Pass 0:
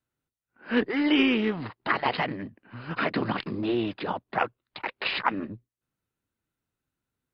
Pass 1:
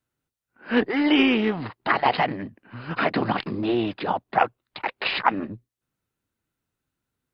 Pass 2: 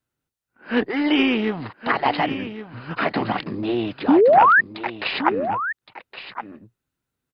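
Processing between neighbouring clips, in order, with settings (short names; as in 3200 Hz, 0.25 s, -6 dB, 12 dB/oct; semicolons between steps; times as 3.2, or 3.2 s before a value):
dynamic EQ 760 Hz, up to +6 dB, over -43 dBFS, Q 2.9; gain +3 dB
painted sound rise, 4.08–4.61, 250–1900 Hz -13 dBFS; echo 1.117 s -11.5 dB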